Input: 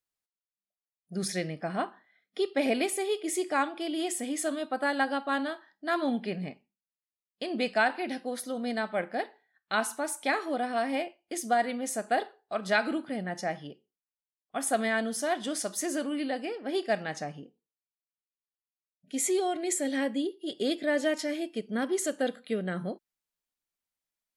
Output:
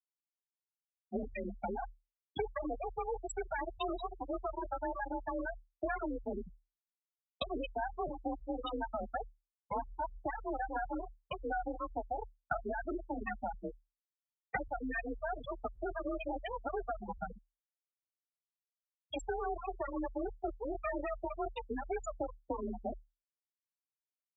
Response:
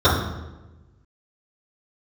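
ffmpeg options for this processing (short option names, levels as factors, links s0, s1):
-filter_complex "[0:a]asplit=2[s0][s1];[s1]adelay=23,volume=0.282[s2];[s0][s2]amix=inputs=2:normalize=0,acrossover=split=500[s3][s4];[s3]aeval=exprs='val(0)*(1-1/2+1/2*cos(2*PI*4.1*n/s))':c=same[s5];[s4]aeval=exprs='val(0)*(1-1/2-1/2*cos(2*PI*4.1*n/s))':c=same[s6];[s5][s6]amix=inputs=2:normalize=0,alimiter=level_in=1.19:limit=0.0631:level=0:latency=1:release=80,volume=0.841,aeval=exprs='0.0562*(cos(1*acos(clip(val(0)/0.0562,-1,1)))-cos(1*PI/2))+0.00126*(cos(2*acos(clip(val(0)/0.0562,-1,1)))-cos(2*PI/2))+0.0178*(cos(4*acos(clip(val(0)/0.0562,-1,1)))-cos(4*PI/2))+0.0178*(cos(8*acos(clip(val(0)/0.0562,-1,1)))-cos(8*PI/2))':c=same,bandreject=f=69.57:t=h:w=4,bandreject=f=139.14:t=h:w=4,bandreject=f=208.71:t=h:w=4,acompressor=threshold=0.00562:ratio=8,afftfilt=real='re*gte(hypot(re,im),0.0126)':imag='im*gte(hypot(re,im),0.0126)':win_size=1024:overlap=0.75,afreqshift=37,aemphasis=mode=production:type=bsi,volume=7.08"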